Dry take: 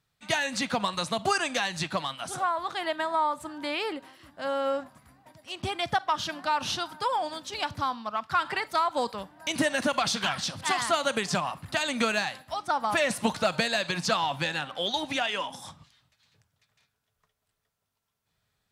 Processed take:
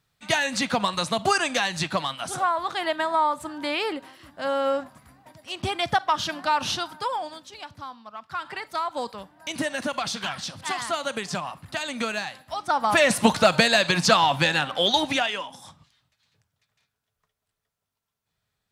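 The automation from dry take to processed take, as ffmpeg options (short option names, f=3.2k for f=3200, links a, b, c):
-af "volume=21dB,afade=t=out:st=6.61:d=0.98:silence=0.223872,afade=t=in:st=8.12:d=0.75:silence=0.446684,afade=t=in:st=12.36:d=0.82:silence=0.316228,afade=t=out:st=14.99:d=0.45:silence=0.298538"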